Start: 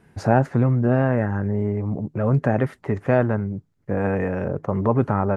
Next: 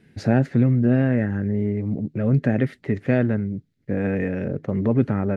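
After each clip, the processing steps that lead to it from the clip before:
octave-band graphic EQ 125/250/500/1,000/2,000/4,000 Hz +4/+8/+3/−11/+8/+9 dB
level −5.5 dB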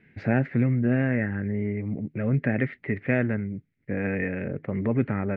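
low-pass with resonance 2,200 Hz, resonance Q 3.4
level −5 dB

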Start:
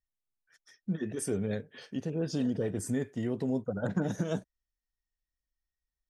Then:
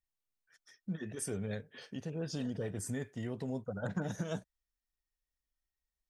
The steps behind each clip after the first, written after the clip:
dynamic equaliser 310 Hz, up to −7 dB, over −44 dBFS, Q 0.84
level −2 dB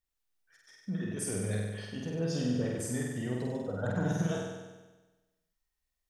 flutter between parallel walls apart 8.3 metres, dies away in 1.2 s
level +1.5 dB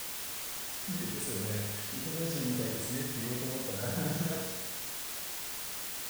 bit-depth reduction 6 bits, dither triangular
level −3.5 dB

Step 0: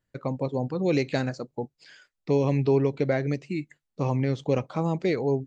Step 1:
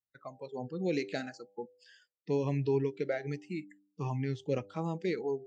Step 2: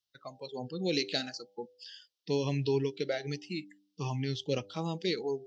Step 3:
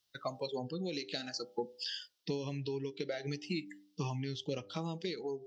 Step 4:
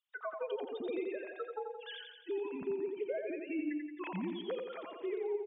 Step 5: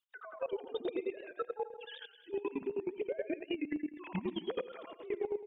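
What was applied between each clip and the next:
noise reduction from a noise print of the clip's start 17 dB; high-pass filter 62 Hz; hum removal 99.15 Hz, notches 8; level −7 dB
flat-topped bell 4,100 Hz +14 dB 1.3 octaves
downward compressor 6 to 1, threshold −39 dBFS, peak gain reduction 13.5 dB; on a send at −16 dB: convolution reverb RT60 0.35 s, pre-delay 3 ms; on the sum: speech leveller within 5 dB 0.5 s; level +4.5 dB
three sine waves on the formant tracks; brickwall limiter −33 dBFS, peak gain reduction 10.5 dB; on a send: repeating echo 87 ms, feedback 57%, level −5 dB; on the sum: level +2 dB
square-wave tremolo 9.4 Hz, depth 65%, duty 35%; output level in coarse steps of 14 dB; wow of a warped record 78 rpm, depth 100 cents; level +8.5 dB

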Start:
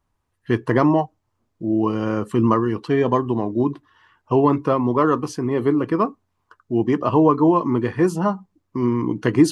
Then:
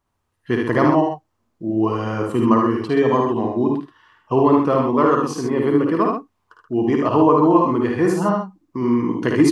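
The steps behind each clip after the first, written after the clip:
low-shelf EQ 140 Hz −6 dB
on a send: multi-tap delay 54/75/128 ms −5/−4/−7.5 dB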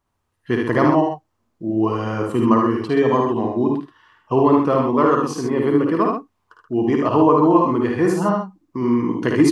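no processing that can be heard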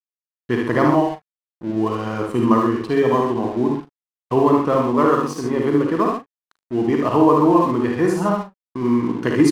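dead-zone distortion −38 dBFS
double-tracking delay 41 ms −12.5 dB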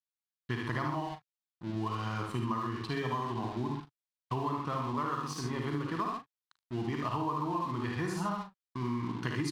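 octave-band graphic EQ 125/250/500/1,000/4,000 Hz +6/−4/−11/+4/+7 dB
downward compressor, threshold −22 dBFS, peak gain reduction 10.5 dB
level −8 dB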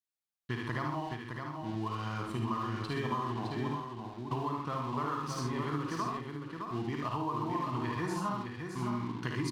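single-tap delay 613 ms −5.5 dB
level −1.5 dB

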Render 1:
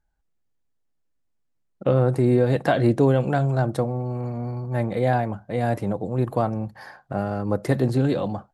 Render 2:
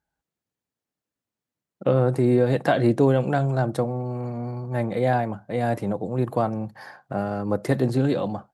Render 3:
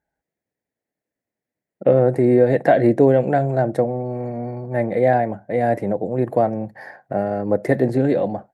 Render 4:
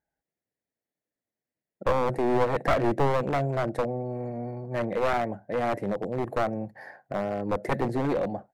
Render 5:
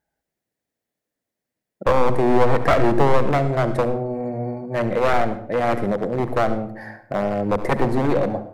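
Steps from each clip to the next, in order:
high-pass filter 110 Hz
drawn EQ curve 130 Hz 0 dB, 660 Hz +8 dB, 1,200 Hz −7 dB, 1,900 Hz +8 dB, 3,000 Hz −7 dB, 11,000 Hz −4 dB
wavefolder on the positive side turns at −14.5 dBFS; level −6.5 dB
convolution reverb RT60 0.60 s, pre-delay 69 ms, DRR 10.5 dB; level +6.5 dB

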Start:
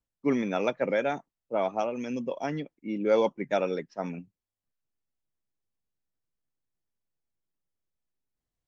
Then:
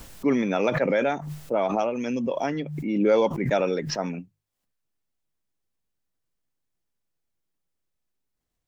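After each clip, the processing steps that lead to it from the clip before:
in parallel at −3 dB: brickwall limiter −20.5 dBFS, peak gain reduction 7.5 dB
on the sum: mains-hum notches 50/100/150 Hz
background raised ahead of every attack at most 43 dB per second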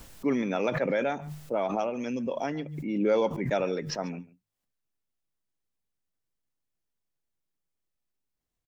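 slap from a distant wall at 24 metres, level −20 dB
level −4.5 dB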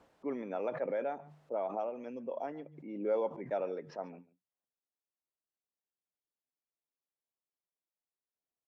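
resonant band-pass 640 Hz, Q 0.96
level −6 dB

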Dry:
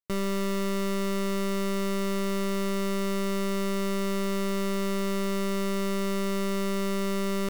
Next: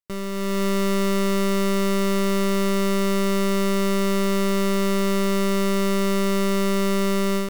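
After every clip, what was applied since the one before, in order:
automatic gain control gain up to 8.5 dB
level −1.5 dB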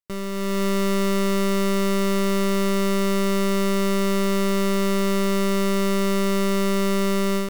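no processing that can be heard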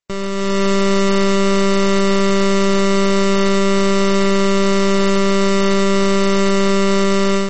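mains-hum notches 50/100/150/200/250/300 Hz
level +8 dB
MP3 32 kbit/s 32,000 Hz

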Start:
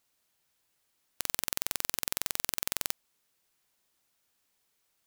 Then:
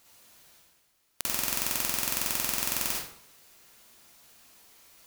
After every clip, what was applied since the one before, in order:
reversed playback
upward compression, threshold −48 dBFS
reversed playback
convolution reverb RT60 0.60 s, pre-delay 43 ms, DRR −4 dB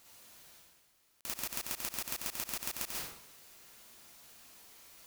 volume swells 216 ms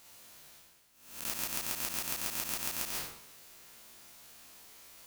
peak hold with a rise ahead of every peak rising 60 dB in 0.65 s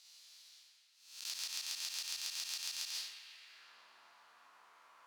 band-pass filter sweep 4,500 Hz → 1,100 Hz, 0:03.13–0:03.77
delay with a band-pass on its return 124 ms, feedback 76%, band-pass 1,600 Hz, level −7 dB
level +4 dB

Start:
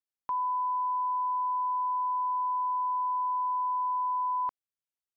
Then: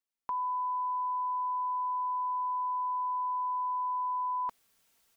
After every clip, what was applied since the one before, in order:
comb filter 4.4 ms, depth 37%
reversed playback
upward compression, threshold −50 dBFS
reversed playback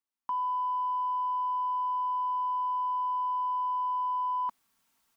in parallel at −7 dB: soft clipping −35.5 dBFS, distortion −15 dB
on the sum: graphic EQ with 10 bands 250 Hz +7 dB, 500 Hz −6 dB, 1,000 Hz +8 dB
level −7 dB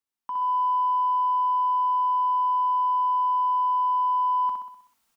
repeating echo 63 ms, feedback 54%, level −4.5 dB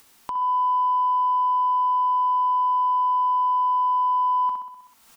upward compression, threshold −32 dBFS
level +2 dB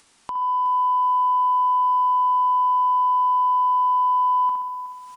downsampling to 22,050 Hz
feedback echo at a low word length 368 ms, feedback 35%, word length 8 bits, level −15 dB

